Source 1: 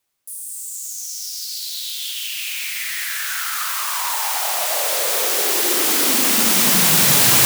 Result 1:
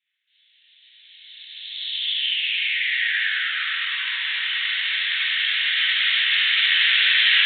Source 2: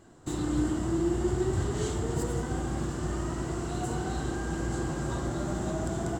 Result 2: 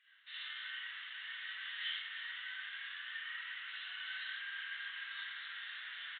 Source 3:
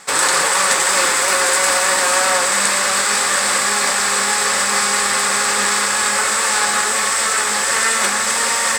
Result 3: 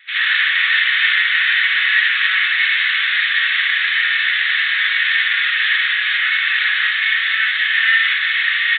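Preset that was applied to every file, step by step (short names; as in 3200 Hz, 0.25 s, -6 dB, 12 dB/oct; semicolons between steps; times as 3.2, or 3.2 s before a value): elliptic high-pass 1800 Hz, stop band 70 dB; non-linear reverb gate 0.1 s rising, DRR -7.5 dB; downsampling 8000 Hz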